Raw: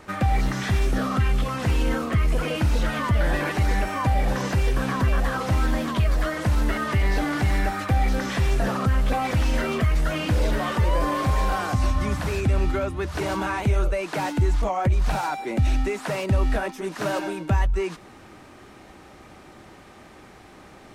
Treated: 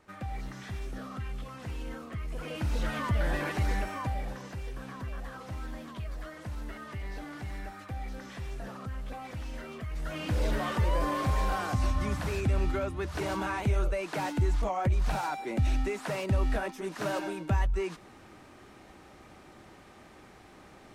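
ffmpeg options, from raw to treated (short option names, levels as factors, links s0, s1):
-af "volume=1.58,afade=t=in:st=2.29:d=0.61:silence=0.354813,afade=t=out:st=3.69:d=0.72:silence=0.316228,afade=t=in:st=9.88:d=0.61:silence=0.281838"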